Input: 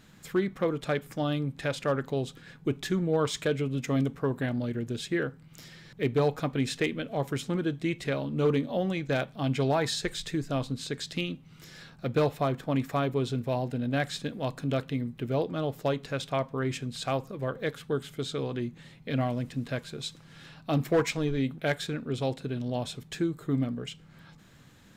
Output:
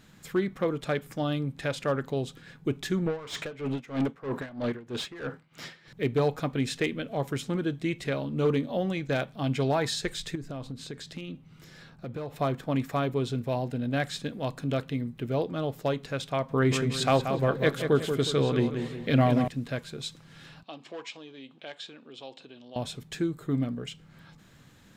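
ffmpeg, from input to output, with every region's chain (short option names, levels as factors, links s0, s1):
-filter_complex "[0:a]asettb=1/sr,asplit=3[s0][s1][s2];[s0]atrim=end=3.064[s3];[s1]atrim=start=3.06:end=5.88,asetpts=PTS-STARTPTS,afade=t=in:d=0.004:c=qsin,afade=t=out:st=2.816:d=0.004:c=qsin,asplit=2[s4][s5];[s5]highpass=f=720:p=1,volume=12.6,asoftclip=type=tanh:threshold=0.133[s6];[s4][s6]amix=inputs=2:normalize=0,lowpass=f=1900:p=1,volume=0.501,aeval=exprs='val(0)*pow(10,-19*(0.5-0.5*cos(2*PI*3.1*n/s))/20)':c=same[s7];[s2]atrim=start=5.876[s8];[s3][s7]acrossfade=d=0.004:c1=hsin:c2=qsin[s9];[s9][s8]acrossfade=d=0.004:c1=qsin:c2=hsin,asettb=1/sr,asplit=3[s10][s11][s12];[s10]atrim=end=10.354[s13];[s11]atrim=start=10.35:end=12.36,asetpts=PTS-STARTPTS,afade=t=in:d=0.004:c=qsin,afade=t=out:st=2.006:d=0.004:c=qsin,acompressor=threshold=0.0224:ratio=5:attack=3.2:release=140:knee=1:detection=peak,highshelf=f=2100:g=-5.5,volume=31.6,asoftclip=hard,volume=0.0316[s14];[s12]atrim=start=12.356[s15];[s13][s14]acrossfade=d=0.004:c1=hsin:c2=qsin[s16];[s16][s15]acrossfade=d=0.004:c1=qsin:c2=hsin,asettb=1/sr,asplit=3[s17][s18][s19];[s17]atrim=end=16.494[s20];[s18]atrim=start=16.49:end=19.48,asetpts=PTS-STARTPTS,afade=t=in:d=0.004:c=qsin,afade=t=out:st=2.986:d=0.004:c=qsin,acontrast=63,asplit=2[s21][s22];[s22]adelay=182,lowpass=f=3200:p=1,volume=0.447,asplit=2[s23][s24];[s24]adelay=182,lowpass=f=3200:p=1,volume=0.46,asplit=2[s25][s26];[s26]adelay=182,lowpass=f=3200:p=1,volume=0.46,asplit=2[s27][s28];[s28]adelay=182,lowpass=f=3200:p=1,volume=0.46,asplit=2[s29][s30];[s30]adelay=182,lowpass=f=3200:p=1,volume=0.46[s31];[s21][s23][s25][s27][s29][s31]amix=inputs=6:normalize=0,atrim=end_sample=131859[s32];[s19]atrim=start=19.476[s33];[s20][s32]acrossfade=d=0.004:c1=hsin:c2=qsin[s34];[s34][s33]acrossfade=d=0.004:c1=qsin:c2=hsin,asettb=1/sr,asplit=3[s35][s36][s37];[s35]atrim=end=20.634[s38];[s36]atrim=start=20.63:end=22.76,asetpts=PTS-STARTPTS,afade=t=in:d=0.004:c=qsin,afade=t=out:st=2.126:d=0.004:c=qsin,acompressor=threshold=0.01:ratio=2:attack=3.2:release=140:knee=1:detection=peak,highpass=430,equalizer=f=440:t=q:w=4:g=-5,equalizer=f=640:t=q:w=4:g=-3,equalizer=f=1400:t=q:w=4:g=-7,equalizer=f=2000:t=q:w=4:g=-6,equalizer=f=3000:t=q:w=4:g=6,equalizer=f=6000:t=q:w=4:g=-4,lowpass=f=6600:w=0.5412,lowpass=f=6600:w=1.3066[s39];[s37]atrim=start=22.756[s40];[s38][s39]acrossfade=d=0.004:c1=hsin:c2=qsin[s41];[s41][s40]acrossfade=d=0.004:c1=qsin:c2=hsin"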